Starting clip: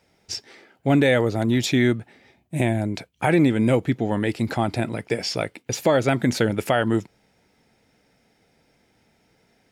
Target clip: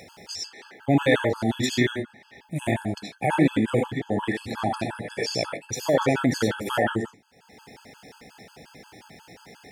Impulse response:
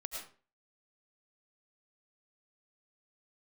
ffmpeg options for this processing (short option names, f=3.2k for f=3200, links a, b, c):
-filter_complex "[1:a]atrim=start_sample=2205,afade=t=out:st=0.27:d=0.01,atrim=end_sample=12348,asetrate=61740,aresample=44100[a];[0:a][a]afir=irnorm=-1:irlink=0,acompressor=mode=upward:threshold=-35dB:ratio=2.5,highpass=90,afftfilt=real='re*gt(sin(2*PI*5.6*pts/sr)*(1-2*mod(floor(b*sr/1024/860),2)),0)':imag='im*gt(sin(2*PI*5.6*pts/sr)*(1-2*mod(floor(b*sr/1024/860),2)),0)':win_size=1024:overlap=0.75,volume=5.5dB"